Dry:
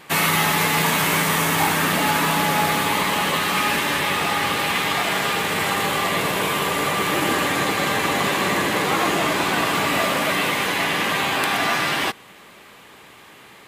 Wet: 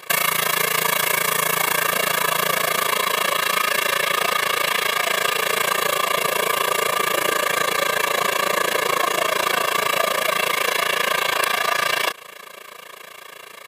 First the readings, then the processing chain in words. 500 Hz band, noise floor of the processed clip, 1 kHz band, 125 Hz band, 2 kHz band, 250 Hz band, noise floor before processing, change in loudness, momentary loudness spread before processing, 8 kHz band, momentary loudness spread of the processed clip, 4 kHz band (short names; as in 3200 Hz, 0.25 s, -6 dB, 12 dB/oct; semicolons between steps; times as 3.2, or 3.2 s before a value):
+1.5 dB, -40 dBFS, -0.5 dB, -11.0 dB, +0.5 dB, -11.0 dB, -46 dBFS, +0.5 dB, 3 LU, +2.0 dB, 3 LU, +0.5 dB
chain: HPF 260 Hz 12 dB/oct; high shelf 10000 Hz +5.5 dB; comb 1.8 ms, depth 100%; compressor, threshold -20 dBFS, peak gain reduction 8 dB; AM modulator 28 Hz, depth 80%; gain +6.5 dB